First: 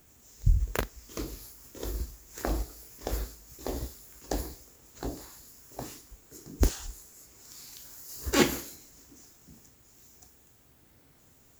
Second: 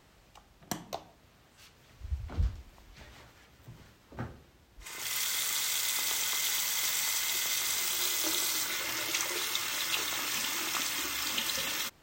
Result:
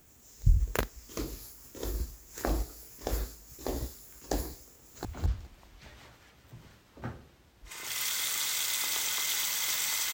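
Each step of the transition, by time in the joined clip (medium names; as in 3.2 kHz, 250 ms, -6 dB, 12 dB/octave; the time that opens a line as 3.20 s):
first
4.70–5.05 s: echo throw 210 ms, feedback 15%, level -5 dB
5.05 s: go over to second from 2.20 s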